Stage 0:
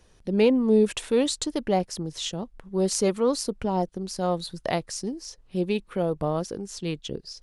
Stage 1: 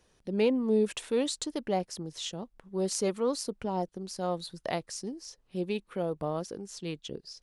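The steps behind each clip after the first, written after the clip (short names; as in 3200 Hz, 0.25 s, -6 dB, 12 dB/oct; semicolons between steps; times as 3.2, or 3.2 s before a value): low shelf 89 Hz -9.5 dB; gain -5.5 dB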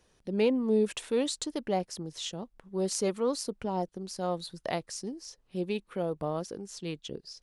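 nothing audible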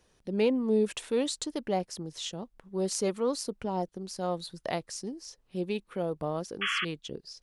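painted sound noise, 6.61–6.85, 1100–3400 Hz -30 dBFS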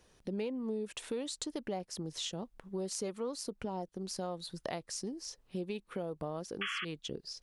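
compressor 5:1, threshold -37 dBFS, peak gain reduction 14.5 dB; gain +1.5 dB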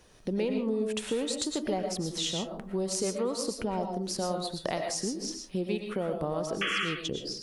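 digital reverb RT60 0.41 s, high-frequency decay 0.4×, pre-delay 75 ms, DRR 3.5 dB; gain +6.5 dB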